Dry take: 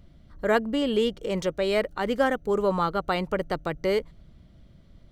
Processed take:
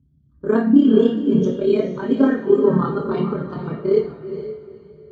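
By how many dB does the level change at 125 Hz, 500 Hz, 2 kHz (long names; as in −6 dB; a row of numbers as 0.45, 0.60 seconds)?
+10.0, +6.5, −4.0 decibels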